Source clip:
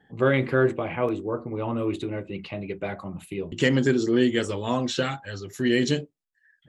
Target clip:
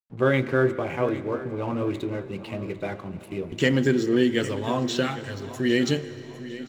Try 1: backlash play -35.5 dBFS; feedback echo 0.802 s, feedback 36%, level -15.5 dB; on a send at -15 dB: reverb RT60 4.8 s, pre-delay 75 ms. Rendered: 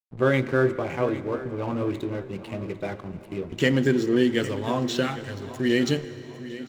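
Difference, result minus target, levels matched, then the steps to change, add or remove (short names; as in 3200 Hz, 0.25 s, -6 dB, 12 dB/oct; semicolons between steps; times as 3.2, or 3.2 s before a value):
backlash: distortion +6 dB
change: backlash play -42 dBFS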